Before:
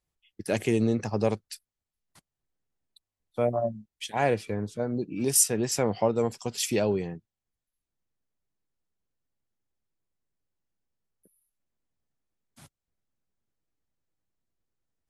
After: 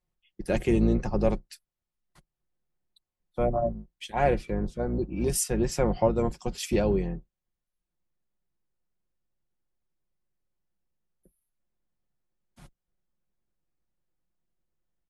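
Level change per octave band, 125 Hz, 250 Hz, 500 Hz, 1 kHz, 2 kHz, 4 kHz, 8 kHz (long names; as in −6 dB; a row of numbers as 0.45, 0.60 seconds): +2.0, +1.5, +0.5, +1.0, −2.0, −5.0, −7.0 decibels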